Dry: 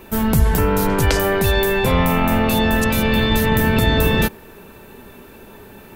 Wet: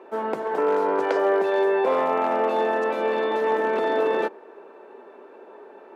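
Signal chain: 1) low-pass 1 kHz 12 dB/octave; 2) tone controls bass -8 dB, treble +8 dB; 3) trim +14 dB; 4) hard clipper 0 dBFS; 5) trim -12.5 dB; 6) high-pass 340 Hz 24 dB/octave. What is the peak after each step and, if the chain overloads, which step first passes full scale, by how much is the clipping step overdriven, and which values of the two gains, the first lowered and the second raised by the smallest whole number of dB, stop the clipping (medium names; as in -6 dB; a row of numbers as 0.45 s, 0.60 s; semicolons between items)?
-4.0 dBFS, -8.5 dBFS, +5.5 dBFS, 0.0 dBFS, -12.5 dBFS, -11.0 dBFS; step 3, 5.5 dB; step 3 +8 dB, step 5 -6.5 dB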